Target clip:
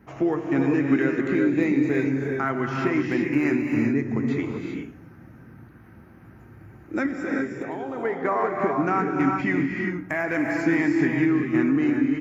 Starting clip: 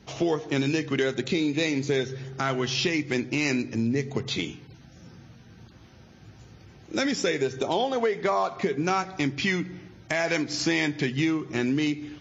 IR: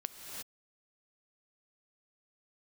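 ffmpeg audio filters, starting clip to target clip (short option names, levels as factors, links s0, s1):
-filter_complex "[0:a]firequalizer=gain_entry='entry(180,0);entry(280,7);entry(450,-1);entry(1300,5);entry(1900,3);entry(3400,-19);entry(6000,-18);entry(10000,9)':delay=0.05:min_phase=1,asettb=1/sr,asplit=3[s0][s1][s2];[s0]atrim=end=7.064[s3];[s1]atrim=start=7.06:end=8.05,asetpts=PTS-STARTPTS,afade=t=in:d=0.004:c=qsin,afade=t=out:st=0.986:d=0.004:c=qsin,acompressor=threshold=0.0398:ratio=6[s4];[s2]atrim=start=8.046[s5];[s3][s4]acrossfade=d=0.004:c1=hsin:c2=qsin[s6];[s6][s5]acrossfade=d=0.004:c1=qsin:c2=hsin[s7];[1:a]atrim=start_sample=2205,asetrate=39690,aresample=44100[s8];[s7][s8]afir=irnorm=-1:irlink=0"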